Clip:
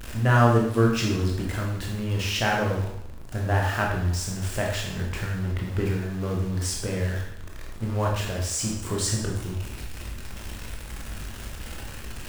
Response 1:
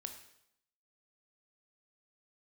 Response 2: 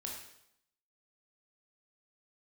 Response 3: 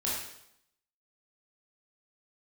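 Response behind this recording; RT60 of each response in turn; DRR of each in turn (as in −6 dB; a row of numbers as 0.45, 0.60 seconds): 2; 0.75, 0.75, 0.75 seconds; 5.5, −1.5, −7.0 decibels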